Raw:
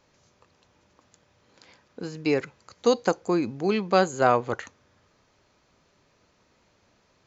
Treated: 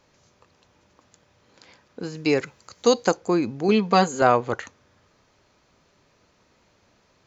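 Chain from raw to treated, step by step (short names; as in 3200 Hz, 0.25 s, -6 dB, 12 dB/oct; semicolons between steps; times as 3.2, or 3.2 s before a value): 2.15–3.17 high shelf 5100 Hz +8 dB; 3.68–4.22 comb 4.3 ms, depth 74%; gain +2.5 dB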